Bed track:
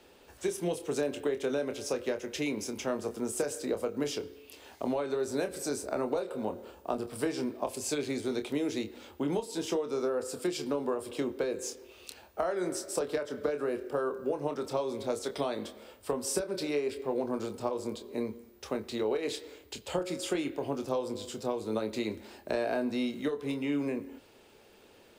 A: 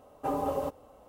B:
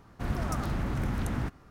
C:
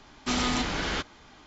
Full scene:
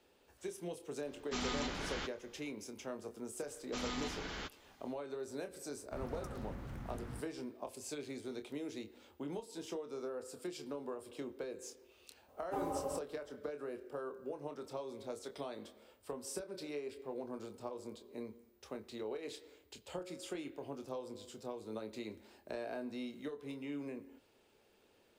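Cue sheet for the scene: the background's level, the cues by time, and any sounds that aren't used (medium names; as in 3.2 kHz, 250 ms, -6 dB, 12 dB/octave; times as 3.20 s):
bed track -11.5 dB
1.05 s: add C -11.5 dB
3.46 s: add C -14 dB
5.72 s: add B -15.5 dB
12.28 s: add A -8.5 dB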